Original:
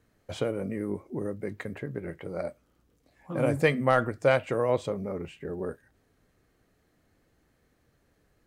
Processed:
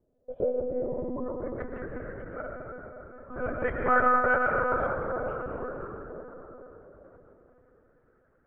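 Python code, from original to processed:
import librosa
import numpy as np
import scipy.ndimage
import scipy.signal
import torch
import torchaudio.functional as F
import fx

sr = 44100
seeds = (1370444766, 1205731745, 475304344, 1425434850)

y = fx.filter_sweep_lowpass(x, sr, from_hz=560.0, to_hz=1400.0, start_s=0.43, end_s=1.6, q=5.4)
y = fx.rev_freeverb(y, sr, rt60_s=4.5, hf_ratio=0.3, predelay_ms=75, drr_db=-0.5)
y = fx.lpc_monotone(y, sr, seeds[0], pitch_hz=250.0, order=16)
y = y * 10.0 ** (-8.5 / 20.0)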